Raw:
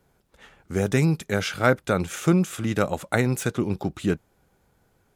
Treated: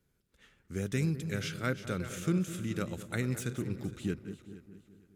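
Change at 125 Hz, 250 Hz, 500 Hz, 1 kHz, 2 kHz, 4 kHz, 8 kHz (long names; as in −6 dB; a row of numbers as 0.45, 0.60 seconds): −8.5, −9.5, −13.5, −15.5, −11.5, −9.5, −9.0 decibels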